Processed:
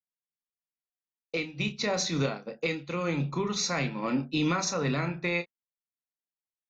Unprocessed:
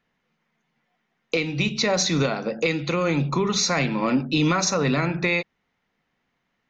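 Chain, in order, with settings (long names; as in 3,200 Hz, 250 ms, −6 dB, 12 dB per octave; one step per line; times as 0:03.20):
downward expander −20 dBFS
double-tracking delay 29 ms −9.5 dB
level −6.5 dB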